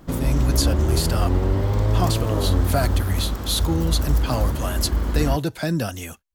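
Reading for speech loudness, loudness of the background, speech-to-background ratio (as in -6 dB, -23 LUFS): -26.0 LUFS, -23.0 LUFS, -3.0 dB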